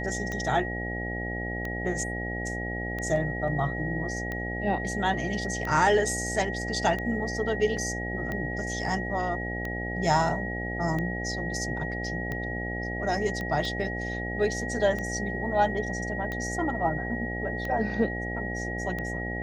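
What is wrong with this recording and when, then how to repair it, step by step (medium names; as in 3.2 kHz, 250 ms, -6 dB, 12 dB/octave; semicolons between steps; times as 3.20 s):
buzz 60 Hz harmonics 14 -34 dBFS
tick 45 rpm -20 dBFS
whine 1.9 kHz -34 dBFS
7.77 s: dropout 3.2 ms
13.41 s: pop -21 dBFS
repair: de-click; de-hum 60 Hz, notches 14; band-stop 1.9 kHz, Q 30; interpolate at 7.77 s, 3.2 ms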